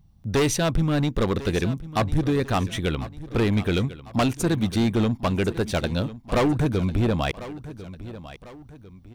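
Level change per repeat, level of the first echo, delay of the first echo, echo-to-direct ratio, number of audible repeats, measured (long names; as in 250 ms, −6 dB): −7.5 dB, −15.5 dB, 1,048 ms, −15.0 dB, 2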